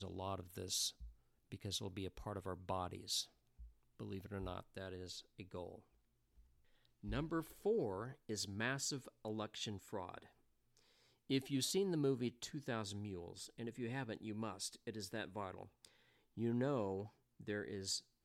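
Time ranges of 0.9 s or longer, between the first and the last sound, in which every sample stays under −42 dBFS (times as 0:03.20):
0:05.69–0:07.05
0:10.18–0:11.30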